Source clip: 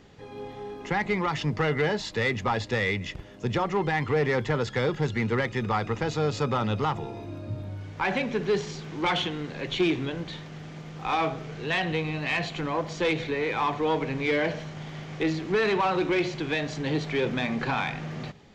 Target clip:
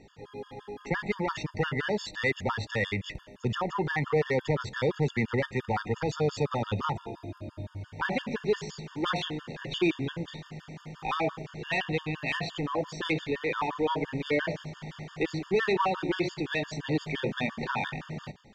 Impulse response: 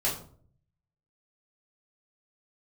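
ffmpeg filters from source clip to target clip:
-filter_complex "[0:a]asplit=2[s0][s1];[s1]highpass=510,lowpass=3900[s2];[1:a]atrim=start_sample=2205,asetrate=74970,aresample=44100,adelay=67[s3];[s2][s3]afir=irnorm=-1:irlink=0,volume=0.0335[s4];[s0][s4]amix=inputs=2:normalize=0,afftfilt=real='re*gt(sin(2*PI*5.8*pts/sr)*(1-2*mod(floor(b*sr/1024/910),2)),0)':imag='im*gt(sin(2*PI*5.8*pts/sr)*(1-2*mod(floor(b*sr/1024/910),2)),0)':win_size=1024:overlap=0.75"

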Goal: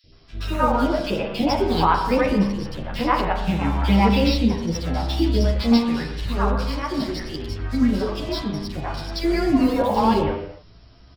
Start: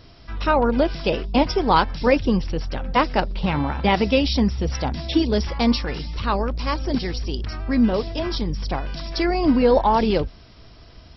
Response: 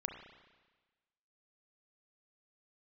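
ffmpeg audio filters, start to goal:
-filter_complex "[0:a]asettb=1/sr,asplit=3[s0][s1][s2];[s0]atrim=end=6.524[s3];[s1]atrim=start=6.52:end=7.04,asetpts=PTS-STARTPTS,afade=t=in:d=0.004:c=qsin,afade=t=out:st=0.516:d=0.004:c=qsin,highpass=90[s4];[s2]atrim=start=7.036[s5];[s3][s4]acrossfade=d=0.004:c1=hsin:c2=qsin[s6];[s6][s5]acrossfade=d=0.004:c1=qsin:c2=hsin,asplit=2[s7][s8];[s8]acrusher=bits=4:mix=0:aa=0.5,volume=0.562[s9];[s7][s9]amix=inputs=2:normalize=0,acrossover=split=550|2400[s10][s11][s12];[s10]adelay=40[s13];[s11]adelay=120[s14];[s13][s14][s12]amix=inputs=3:normalize=0[s15];[1:a]atrim=start_sample=2205,afade=t=out:st=0.33:d=0.01,atrim=end_sample=14994[s16];[s15][s16]afir=irnorm=-1:irlink=0,asplit=2[s17][s18];[s18]adelay=10.5,afreqshift=0.69[s19];[s17][s19]amix=inputs=2:normalize=1"

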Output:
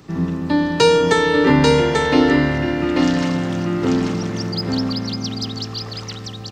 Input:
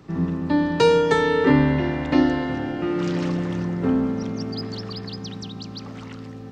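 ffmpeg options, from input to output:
-af "highshelf=f=3500:g=9.5,aecho=1:1:840:0.708,volume=1.33"

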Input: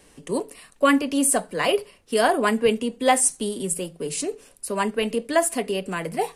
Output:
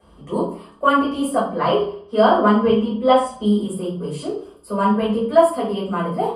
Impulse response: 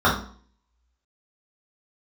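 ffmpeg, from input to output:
-filter_complex "[0:a]asettb=1/sr,asplit=3[s0][s1][s2];[s0]atrim=end=1.294[s3];[s1]atrim=start=1.29:end=3.45,asetpts=PTS-STARTPTS,afade=t=in:d=0.004:c=qsin,afade=t=out:st=2.156:d=0.004:c=qsin,lowpass=6200[s4];[s2]atrim=start=3.446[s5];[s3][s4]acrossfade=d=0.004:c1=hsin:c2=qsin[s6];[s6][s5]acrossfade=d=0.004:c1=qsin:c2=hsin[s7];[1:a]atrim=start_sample=2205,asetrate=38367,aresample=44100[s8];[s7][s8]afir=irnorm=-1:irlink=0,volume=0.133"

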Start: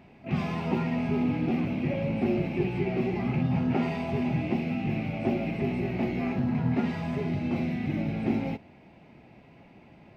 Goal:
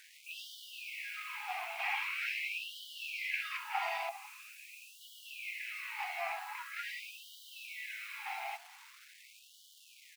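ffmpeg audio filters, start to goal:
-filter_complex "[0:a]asettb=1/sr,asplit=3[s0][s1][s2];[s0]atrim=end=1.794[s3];[s1]atrim=start=1.79:end=3.57,asetpts=PTS-STARTPTS,afade=t=in:d=0.004:c=qsin,afade=t=out:st=1.776:d=0.004:c=qsin,acontrast=62[s4];[s2]atrim=start=3.566[s5];[s3][s4]acrossfade=d=0.004:c1=hsin:c2=qsin[s6];[s6][s5]acrossfade=d=0.004:c1=qsin:c2=hsin,asettb=1/sr,asplit=3[s7][s8][s9];[s7]atrim=end=4.094[s10];[s8]atrim=start=4.09:end=5.01,asetpts=PTS-STARTPTS,afade=t=in:d=0.004:c=qsin,afade=t=out:st=0.916:d=0.004:c=qsin,asplit=3[s11][s12][s13];[s11]bandpass=f=730:t=q:w=8,volume=1[s14];[s12]bandpass=f=1090:t=q:w=8,volume=0.501[s15];[s13]bandpass=f=2440:t=q:w=8,volume=0.355[s16];[s14][s15][s16]amix=inputs=3:normalize=0[s17];[s9]atrim=start=5.006[s18];[s10][s17]acrossfade=d=0.004:c1=hsin:c2=qsin[s19];[s19][s18]acrossfade=d=0.004:c1=qsin:c2=hsin,acrusher=bits=8:mix=0:aa=0.000001,asplit=2[s20][s21];[s21]aecho=0:1:938:0.0794[s22];[s20][s22]amix=inputs=2:normalize=0,afftfilt=real='re*gte(b*sr/1024,650*pow(2900/650,0.5+0.5*sin(2*PI*0.44*pts/sr)))':imag='im*gte(b*sr/1024,650*pow(2900/650,0.5+0.5*sin(2*PI*0.44*pts/sr)))':win_size=1024:overlap=0.75,volume=1.19"

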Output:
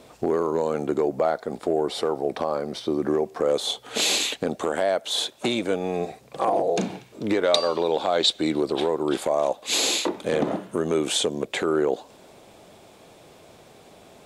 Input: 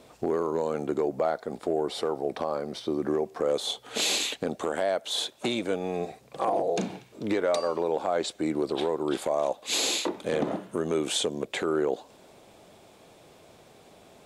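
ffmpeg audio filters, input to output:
-filter_complex "[0:a]asettb=1/sr,asplit=3[s0][s1][s2];[s0]atrim=end=7.434[s3];[s1]atrim=start=7.43:end=8.61,asetpts=PTS-STARTPTS,afade=t=in:d=0.004:c=qsin,afade=t=out:st=1.176:d=0.004:c=qsin,equalizer=f=3700:t=o:w=0.74:g=13.5[s4];[s2]atrim=start=8.606[s5];[s3][s4]acrossfade=d=0.004:c1=hsin:c2=qsin[s6];[s6][s5]acrossfade=d=0.004:c1=qsin:c2=hsin,volume=1.58"

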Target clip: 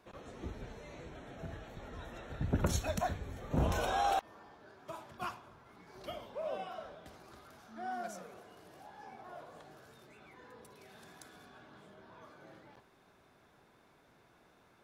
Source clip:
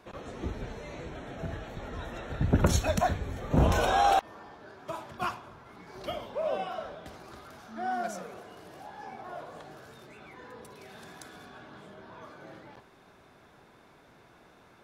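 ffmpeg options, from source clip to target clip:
-af "highshelf=f=7900:g=4,volume=0.398"

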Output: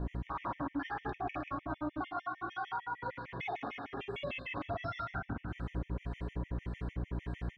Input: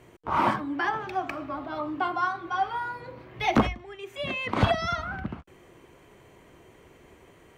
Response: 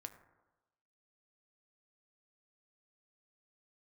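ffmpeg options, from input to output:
-filter_complex "[0:a]aecho=1:1:7.2:0.42[s0];[1:a]atrim=start_sample=2205[s1];[s0][s1]afir=irnorm=-1:irlink=0,aeval=exprs='val(0)+0.00355*(sin(2*PI*60*n/s)+sin(2*PI*2*60*n/s)/2+sin(2*PI*3*60*n/s)/3+sin(2*PI*4*60*n/s)/4+sin(2*PI*5*60*n/s)/5)':c=same,acompressor=threshold=0.00562:ratio=4,asettb=1/sr,asplit=3[s2][s3][s4];[s2]atrim=end=2.024[s5];[s3]atrim=start=2.02:end=4.21,asetpts=PTS-STARTPTS,afade=t=in:d=0.004:c=qsin,afade=t=out:st=2.186:d=0.004:c=qsin,highpass=f=390:p=1[s6];[s4]atrim=start=4.206[s7];[s5][s6]acrossfade=d=0.004:c1=hsin:c2=qsin[s8];[s8][s7]acrossfade=d=0.004:c1=qsin:c2=hsin,aecho=1:1:50|110|182|268.4|372.1:0.631|0.398|0.251|0.158|0.1,acrossover=split=1400[s9][s10];[s9]aeval=exprs='val(0)*(1-0.5/2+0.5/2*cos(2*PI*1.7*n/s))':c=same[s11];[s10]aeval=exprs='val(0)*(1-0.5/2-0.5/2*cos(2*PI*1.7*n/s))':c=same[s12];[s11][s12]amix=inputs=2:normalize=0,alimiter=level_in=8.41:limit=0.0631:level=0:latency=1:release=87,volume=0.119,lowpass=3100,afftfilt=real='re*gt(sin(2*PI*6.6*pts/sr)*(1-2*mod(floor(b*sr/1024/1800),2)),0)':imag='im*gt(sin(2*PI*6.6*pts/sr)*(1-2*mod(floor(b*sr/1024/1800),2)),0)':win_size=1024:overlap=0.75,volume=5.62"

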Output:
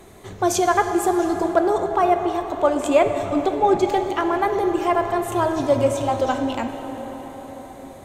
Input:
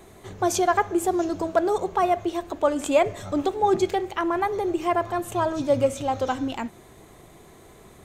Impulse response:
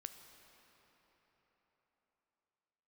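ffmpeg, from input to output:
-filter_complex "[1:a]atrim=start_sample=2205,asetrate=34398,aresample=44100[s0];[0:a][s0]afir=irnorm=-1:irlink=0,asplit=3[s1][s2][s3];[s1]afade=t=out:st=1.53:d=0.02[s4];[s2]adynamicequalizer=threshold=0.00631:dfrequency=3100:dqfactor=0.7:tfrequency=3100:tqfactor=0.7:attack=5:release=100:ratio=0.375:range=2.5:mode=cutabove:tftype=highshelf,afade=t=in:st=1.53:d=0.02,afade=t=out:st=3.86:d=0.02[s5];[s3]afade=t=in:st=3.86:d=0.02[s6];[s4][s5][s6]amix=inputs=3:normalize=0,volume=2.24"

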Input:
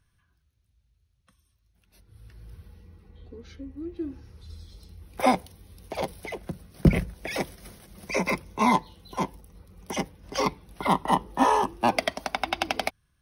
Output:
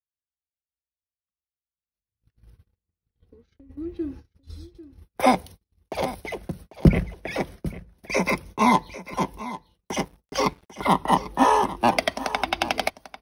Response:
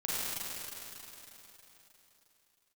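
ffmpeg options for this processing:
-filter_complex "[0:a]agate=range=0.00708:threshold=0.00708:ratio=16:detection=peak,asplit=3[s0][s1][s2];[s0]afade=t=out:st=2.49:d=0.02[s3];[s1]acompressor=threshold=0.002:ratio=5,afade=t=in:st=2.49:d=0.02,afade=t=out:st=3.69:d=0.02[s4];[s2]afade=t=in:st=3.69:d=0.02[s5];[s3][s4][s5]amix=inputs=3:normalize=0,asettb=1/sr,asplit=3[s6][s7][s8];[s6]atrim=end=6.884[s9];[s7]atrim=start=6.88:end=7.66,asetpts=PTS-STARTPTS,afade=t=in:d=0.004:c=qsin,afade=t=out:st=0.776:d=0.004:c=qsin,highshelf=f=3900:g=-11[s10];[s8]atrim=start=7.656[s11];[s9][s10]acrossfade=d=0.004:c1=hsin:c2=qsin[s12];[s12][s11]acrossfade=d=0.004:c1=qsin:c2=hsin,asettb=1/sr,asplit=3[s13][s14][s15];[s13]atrim=end=9.954[s16];[s14]atrim=start=9.95:end=10.85,asetpts=PTS-STARTPTS,afade=t=in:d=0.004:c=qsin,afade=t=out:st=0.896:d=0.004:c=qsin,aeval=exprs='sgn(val(0))*max(abs(val(0))-0.00282,0)':c=same[s17];[s15]atrim=start=10.846[s18];[s16][s17]acrossfade=d=0.004:c1=hsin:c2=qsin[s19];[s19][s18]acrossfade=d=0.004:c1=qsin:c2=hsin,aecho=1:1:795:0.168,volume=1.41"

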